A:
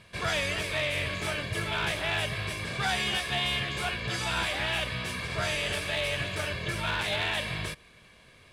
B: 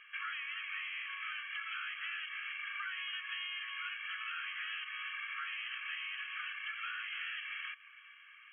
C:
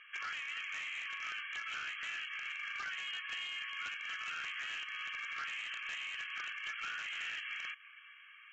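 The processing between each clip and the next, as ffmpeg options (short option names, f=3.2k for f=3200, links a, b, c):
-af "afftfilt=real='re*between(b*sr/4096,1100,3300)':imag='im*between(b*sr/4096,1100,3300)':win_size=4096:overlap=0.75,acompressor=threshold=-41dB:ratio=6,volume=2dB"
-af "aeval=exprs='0.0188*(abs(mod(val(0)/0.0188+3,4)-2)-1)':c=same" -ar 16000 -c:a libvorbis -b:a 48k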